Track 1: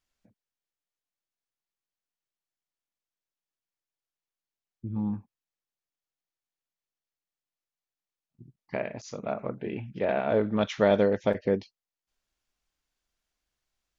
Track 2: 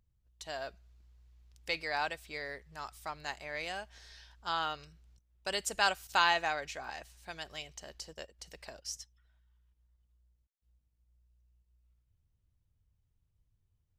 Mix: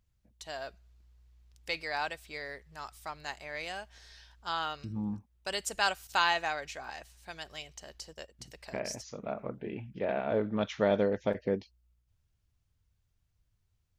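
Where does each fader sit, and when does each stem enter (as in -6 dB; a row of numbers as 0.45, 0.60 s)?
-5.0, 0.0 dB; 0.00, 0.00 s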